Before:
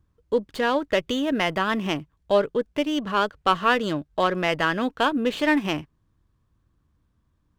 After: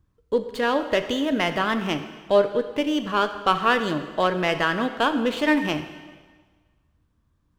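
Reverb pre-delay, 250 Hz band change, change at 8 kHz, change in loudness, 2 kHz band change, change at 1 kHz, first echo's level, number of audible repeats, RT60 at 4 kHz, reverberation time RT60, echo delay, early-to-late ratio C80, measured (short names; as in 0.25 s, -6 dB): 10 ms, +0.5 dB, +0.5 dB, +0.5 dB, +0.5 dB, +0.5 dB, none, none, 1.4 s, 1.5 s, none, 11.5 dB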